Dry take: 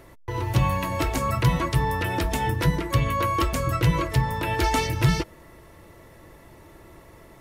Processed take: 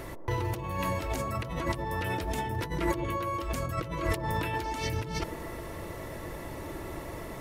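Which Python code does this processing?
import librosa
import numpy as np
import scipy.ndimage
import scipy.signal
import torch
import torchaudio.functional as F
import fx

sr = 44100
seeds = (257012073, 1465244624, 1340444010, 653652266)

y = fx.over_compress(x, sr, threshold_db=-33.0, ratio=-1.0)
y = fx.echo_wet_bandpass(y, sr, ms=122, feedback_pct=64, hz=450.0, wet_db=-6.0)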